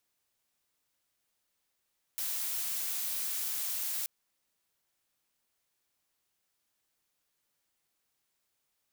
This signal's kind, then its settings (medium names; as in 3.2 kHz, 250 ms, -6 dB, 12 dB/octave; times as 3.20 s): noise blue, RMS -34.5 dBFS 1.88 s